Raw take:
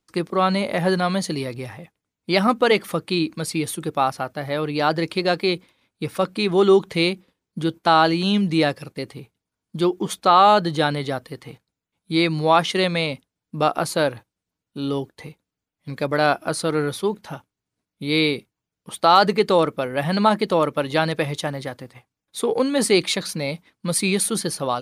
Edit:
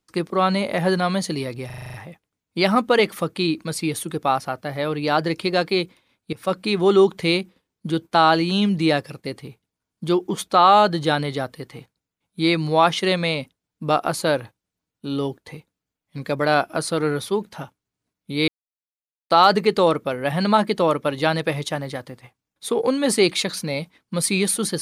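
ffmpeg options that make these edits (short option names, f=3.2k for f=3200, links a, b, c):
-filter_complex "[0:a]asplit=11[a][b][c][d][e][f][g][h][i][j][k];[a]atrim=end=1.702[l];[b]atrim=start=1.658:end=1.702[m];[c]atrim=start=1.658:end=1.702[n];[d]atrim=start=1.658:end=1.702[o];[e]atrim=start=1.658:end=1.702[p];[f]atrim=start=1.658:end=1.702[q];[g]atrim=start=1.658:end=1.702[r];[h]atrim=start=1.658:end=6.05,asetpts=PTS-STARTPTS,afade=t=out:st=4.388:d=0.004:c=hsin:silence=0.125893[s];[i]atrim=start=6.05:end=18.2,asetpts=PTS-STARTPTS,afade=t=in:d=0.25:c=qsin:silence=0.125893,afade=t=out:st=12.146:d=0.004:c=hsin[t];[j]atrim=start=18.2:end=19.02,asetpts=PTS-STARTPTS,volume=0[u];[k]atrim=start=19.02,asetpts=PTS-STARTPTS,afade=t=in:d=0.004:c=hsin[v];[l][m]acrossfade=d=0.004:c1=hsin:c2=hsin[w];[w][n]acrossfade=d=0.004:c1=hsin:c2=hsin[x];[x][o]acrossfade=d=0.004:c1=hsin:c2=hsin[y];[y][p]acrossfade=d=0.004:c1=hsin:c2=hsin[z];[z][q]acrossfade=d=0.004:c1=hsin:c2=hsin[aa];[aa][r]acrossfade=d=0.004:c1=hsin:c2=hsin[ab];[s][t][u][v]concat=n=4:v=0:a=1[ac];[ab][ac]acrossfade=d=0.004:c1=hsin:c2=hsin"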